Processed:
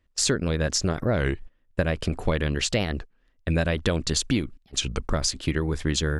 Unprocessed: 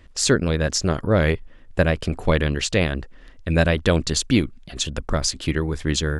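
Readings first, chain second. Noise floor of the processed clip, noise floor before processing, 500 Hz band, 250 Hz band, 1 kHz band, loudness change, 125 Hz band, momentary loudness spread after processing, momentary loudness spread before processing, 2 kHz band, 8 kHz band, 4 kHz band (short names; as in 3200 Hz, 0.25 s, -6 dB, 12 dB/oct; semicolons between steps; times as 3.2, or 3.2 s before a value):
-65 dBFS, -46 dBFS, -5.5 dB, -4.5 dB, -5.0 dB, -4.5 dB, -4.0 dB, 5 LU, 8 LU, -5.0 dB, -2.0 dB, -2.5 dB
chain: gate -32 dBFS, range -20 dB; compressor 5:1, threshold -20 dBFS, peak gain reduction 8 dB; record warp 33 1/3 rpm, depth 250 cents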